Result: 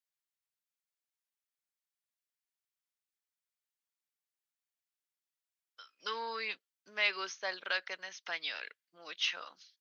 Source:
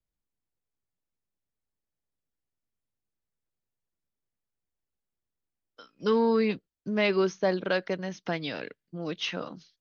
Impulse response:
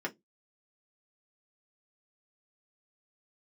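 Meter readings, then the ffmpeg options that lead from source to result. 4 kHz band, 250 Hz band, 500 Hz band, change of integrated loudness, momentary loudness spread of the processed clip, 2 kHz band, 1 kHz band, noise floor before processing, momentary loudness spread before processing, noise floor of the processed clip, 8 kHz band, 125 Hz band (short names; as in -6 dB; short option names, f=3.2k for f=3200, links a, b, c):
0.0 dB, -29.0 dB, -18.5 dB, -8.0 dB, 15 LU, -1.0 dB, -7.5 dB, under -85 dBFS, 14 LU, under -85 dBFS, n/a, under -30 dB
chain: -af "highpass=1.4k"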